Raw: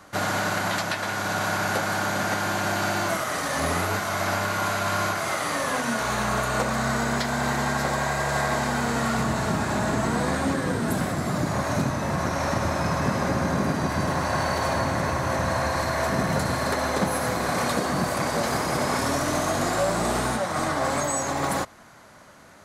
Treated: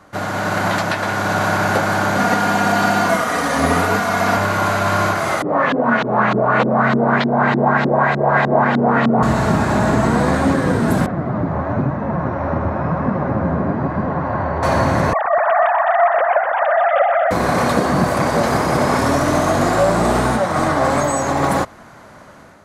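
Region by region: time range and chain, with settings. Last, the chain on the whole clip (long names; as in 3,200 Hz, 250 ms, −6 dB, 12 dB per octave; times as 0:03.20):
0:02.17–0:04.37: mains-hum notches 60/120/180 Hz + comb filter 4.2 ms, depth 63%
0:05.42–0:09.23: auto-filter low-pass saw up 3.3 Hz 270–3,700 Hz + high-pass filter 120 Hz 24 dB per octave
0:11.06–0:14.63: low-pass filter 1,500 Hz + flanger 1 Hz, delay 3.6 ms, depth 9.3 ms, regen +46%
0:15.13–0:17.31: three sine waves on the formant tracks + echo machine with several playback heads 125 ms, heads first and second, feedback 44%, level −10 dB
whole clip: automatic gain control gain up to 6.5 dB; high-shelf EQ 2,300 Hz −9 dB; level +3.5 dB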